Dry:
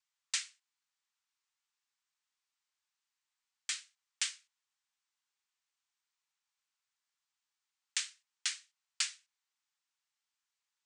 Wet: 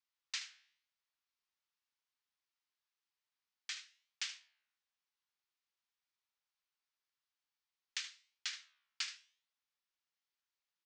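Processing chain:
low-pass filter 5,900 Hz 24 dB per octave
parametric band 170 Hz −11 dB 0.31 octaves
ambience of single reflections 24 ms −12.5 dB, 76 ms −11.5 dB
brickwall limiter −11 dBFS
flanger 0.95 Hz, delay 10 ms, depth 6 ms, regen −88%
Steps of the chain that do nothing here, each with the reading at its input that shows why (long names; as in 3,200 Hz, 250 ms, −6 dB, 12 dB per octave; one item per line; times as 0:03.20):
parametric band 170 Hz: nothing at its input below 680 Hz
brickwall limiter −11 dBFS: peak of its input −18.5 dBFS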